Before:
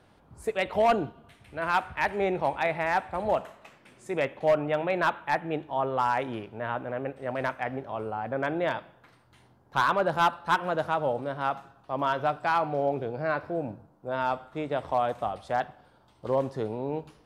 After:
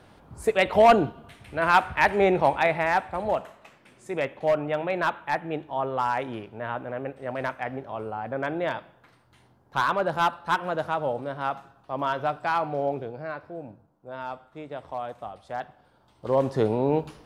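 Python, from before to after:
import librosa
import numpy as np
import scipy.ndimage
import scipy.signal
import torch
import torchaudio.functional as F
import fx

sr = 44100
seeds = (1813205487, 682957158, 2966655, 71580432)

y = fx.gain(x, sr, db=fx.line((2.4, 6.5), (3.37, 0.0), (12.91, 0.0), (13.35, -7.0), (15.37, -7.0), (16.26, 1.5), (16.61, 8.5)))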